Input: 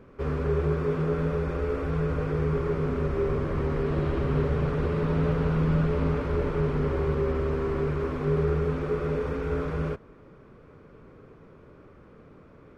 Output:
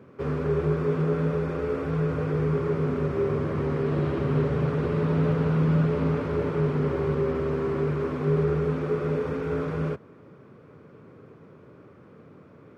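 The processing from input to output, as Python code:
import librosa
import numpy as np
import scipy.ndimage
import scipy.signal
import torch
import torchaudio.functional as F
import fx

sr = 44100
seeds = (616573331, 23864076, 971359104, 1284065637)

y = scipy.signal.sosfilt(scipy.signal.butter(4, 97.0, 'highpass', fs=sr, output='sos'), x)
y = fx.low_shelf(y, sr, hz=430.0, db=3.0)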